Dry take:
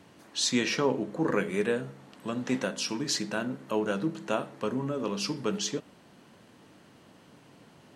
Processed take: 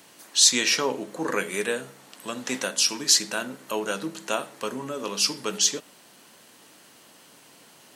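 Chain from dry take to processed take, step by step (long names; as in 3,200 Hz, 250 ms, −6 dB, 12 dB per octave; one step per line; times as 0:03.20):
RIAA equalisation recording
level +3 dB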